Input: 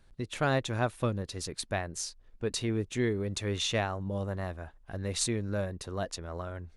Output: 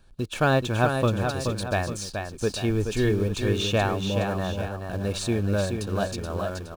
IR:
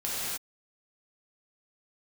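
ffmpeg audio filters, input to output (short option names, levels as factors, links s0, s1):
-filter_complex "[0:a]asplit=3[s0][s1][s2];[s0]afade=t=out:st=2.69:d=0.02[s3];[s1]asubboost=boost=10.5:cutoff=55,afade=t=in:st=2.69:d=0.02,afade=t=out:st=3.09:d=0.02[s4];[s2]afade=t=in:st=3.09:d=0.02[s5];[s3][s4][s5]amix=inputs=3:normalize=0,acrossover=split=3300[s6][s7];[s7]acompressor=threshold=0.01:ratio=4:attack=1:release=60[s8];[s6][s8]amix=inputs=2:normalize=0,asplit=2[s9][s10];[s10]acrusher=bits=6:mix=0:aa=0.000001,volume=0.299[s11];[s9][s11]amix=inputs=2:normalize=0,asuperstop=centerf=2000:order=12:qfactor=6.3,aecho=1:1:427|845:0.501|0.237,volume=1.68"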